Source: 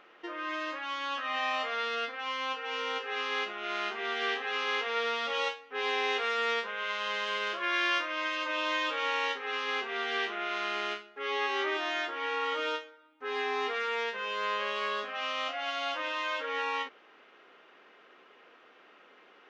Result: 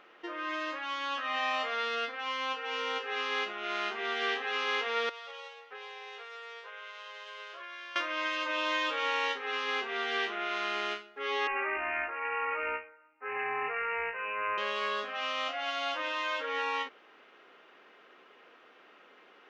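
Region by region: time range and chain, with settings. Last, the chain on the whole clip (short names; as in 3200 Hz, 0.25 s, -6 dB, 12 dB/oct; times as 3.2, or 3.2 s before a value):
5.09–7.96 HPF 410 Hz 24 dB/oct + compressor 10:1, threshold -41 dBFS + echo 0.433 s -20.5 dB
11.47–14.58 HPF 500 Hz + careless resampling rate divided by 8×, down none, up filtered
whole clip: dry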